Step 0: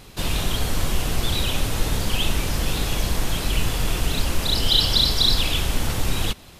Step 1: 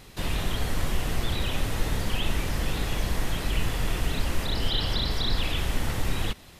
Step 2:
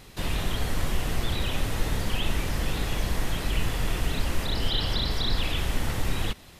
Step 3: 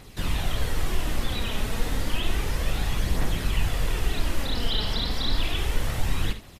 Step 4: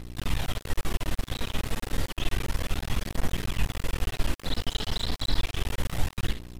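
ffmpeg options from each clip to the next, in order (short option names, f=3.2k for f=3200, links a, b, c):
-filter_complex "[0:a]acrossover=split=2900[a][b];[b]acompressor=threshold=-34dB:ratio=4:attack=1:release=60[c];[a][c]amix=inputs=2:normalize=0,equalizer=f=1.9k:t=o:w=0.22:g=5,volume=-4dB"
-af anull
-filter_complex "[0:a]aphaser=in_gain=1:out_gain=1:delay=4.8:decay=0.36:speed=0.31:type=triangular,asplit=2[a][b];[b]aecho=0:1:52|75:0.237|0.2[c];[a][c]amix=inputs=2:normalize=0,volume=-1dB"
-af "aeval=exprs='val(0)+0.0158*(sin(2*PI*60*n/s)+sin(2*PI*2*60*n/s)/2+sin(2*PI*3*60*n/s)/3+sin(2*PI*4*60*n/s)/4+sin(2*PI*5*60*n/s)/5)':c=same,aeval=exprs='max(val(0),0)':c=same"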